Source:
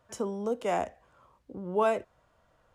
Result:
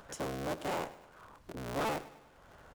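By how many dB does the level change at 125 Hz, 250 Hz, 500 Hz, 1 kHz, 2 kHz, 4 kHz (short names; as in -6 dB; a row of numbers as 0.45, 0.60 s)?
+0.5, -4.5, -9.0, -6.0, -1.5, +3.5 dB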